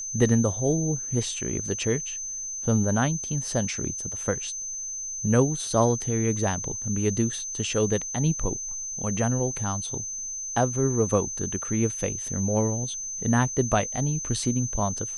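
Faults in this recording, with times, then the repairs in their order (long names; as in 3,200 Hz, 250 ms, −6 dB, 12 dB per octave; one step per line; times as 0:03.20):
whistle 6,200 Hz −31 dBFS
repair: notch filter 6,200 Hz, Q 30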